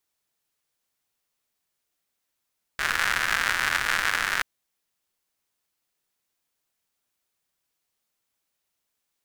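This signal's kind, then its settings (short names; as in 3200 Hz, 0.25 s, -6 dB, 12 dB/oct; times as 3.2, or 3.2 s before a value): rain from filtered ticks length 1.63 s, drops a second 170, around 1600 Hz, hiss -16 dB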